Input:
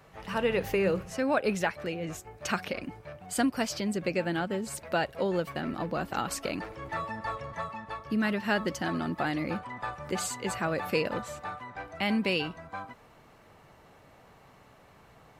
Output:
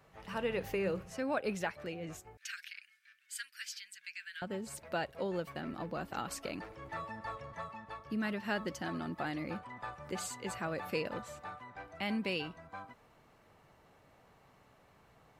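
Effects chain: 2.37–4.42 elliptic high-pass 1600 Hz, stop band 50 dB; gain -7.5 dB

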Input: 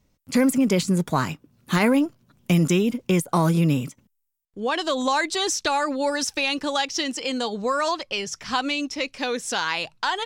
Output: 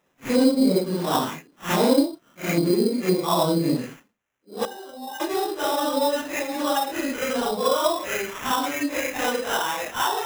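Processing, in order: phase scrambler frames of 0.2 s; HPF 320 Hz 12 dB/oct; treble ducked by the level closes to 820 Hz, closed at -21 dBFS; 4.65–5.2 octave resonator G, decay 0.15 s; sample-rate reducer 4500 Hz, jitter 0%; gain +5 dB

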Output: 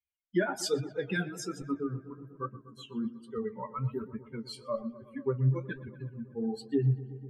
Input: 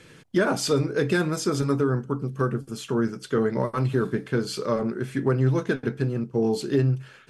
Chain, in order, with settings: per-bin expansion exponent 3; darkening echo 0.122 s, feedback 80%, low-pass 2700 Hz, level -17 dB; flange 1.2 Hz, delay 9.5 ms, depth 7.9 ms, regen -48%; gain +1.5 dB

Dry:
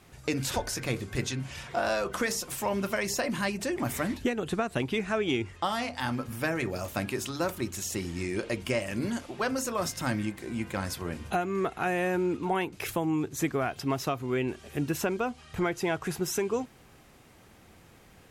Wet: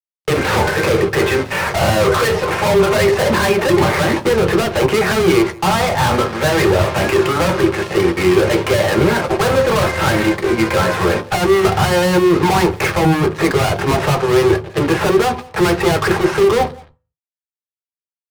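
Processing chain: HPF 430 Hz 24 dB/oct; gate -45 dBFS, range -10 dB; LPF 2100 Hz 24 dB/oct; fuzz box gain 49 dB, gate -58 dBFS; speakerphone echo 0.17 s, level -11 dB; on a send at -4 dB: reverb RT60 0.35 s, pre-delay 3 ms; on the sum: gain -3 dB

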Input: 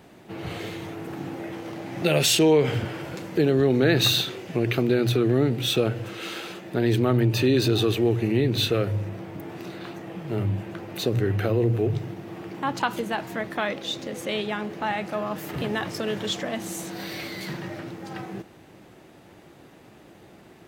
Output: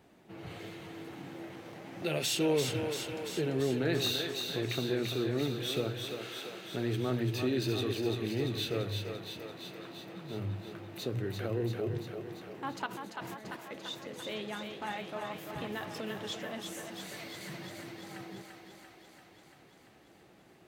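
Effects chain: 12.86–13.71 negative-ratio compressor -37 dBFS, ratio -1; flange 0.95 Hz, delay 2.3 ms, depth 5.6 ms, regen -71%; thinning echo 0.341 s, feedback 71%, high-pass 370 Hz, level -5 dB; gain -7 dB

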